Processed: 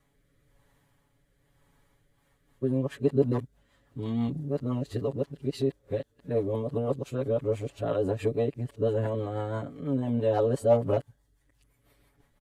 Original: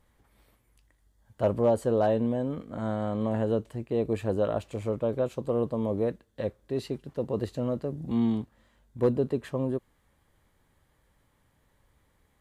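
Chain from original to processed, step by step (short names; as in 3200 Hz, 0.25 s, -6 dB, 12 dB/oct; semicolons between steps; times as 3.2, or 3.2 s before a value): whole clip reversed; comb 7.1 ms, depth 85%; rotary speaker horn 1 Hz, later 6 Hz, at 1.84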